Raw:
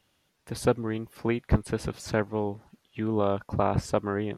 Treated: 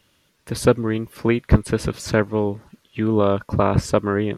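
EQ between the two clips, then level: peaking EQ 760 Hz -10 dB 0.26 oct; +8.5 dB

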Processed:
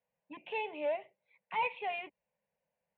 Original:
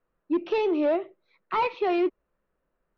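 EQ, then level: dynamic bell 530 Hz, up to -4 dB, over -38 dBFS, Q 0.82; cabinet simulation 190–3400 Hz, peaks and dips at 260 Hz -9 dB, 380 Hz -3 dB, 680 Hz -5 dB, 1.1 kHz -7 dB, 1.7 kHz -7 dB; static phaser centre 1.3 kHz, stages 6; 0.0 dB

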